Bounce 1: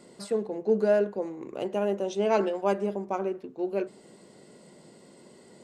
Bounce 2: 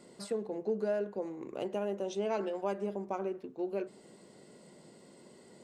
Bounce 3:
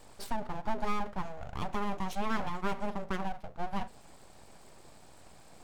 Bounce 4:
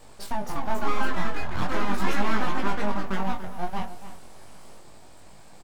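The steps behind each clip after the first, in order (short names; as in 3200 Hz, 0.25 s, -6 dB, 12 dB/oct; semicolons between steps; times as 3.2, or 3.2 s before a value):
compressor 2.5:1, threshold -28 dBFS, peak gain reduction 7 dB; gain -3.5 dB
full-wave rectifier; gain +3.5 dB
outdoor echo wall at 49 m, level -13 dB; echoes that change speed 0.309 s, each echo +4 st, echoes 3; chorus 0.39 Hz, delay 19 ms, depth 3.6 ms; gain +7.5 dB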